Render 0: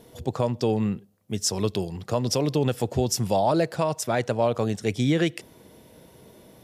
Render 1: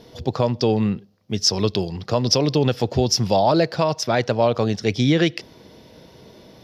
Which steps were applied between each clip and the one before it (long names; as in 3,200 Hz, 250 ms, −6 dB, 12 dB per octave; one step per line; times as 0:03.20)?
high shelf with overshoot 6,600 Hz −9.5 dB, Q 3
level +4.5 dB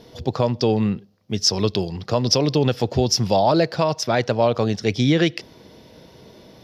no processing that can be heard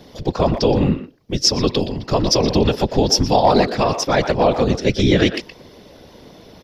random phases in short frames
far-end echo of a speakerphone 120 ms, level −9 dB
level +3 dB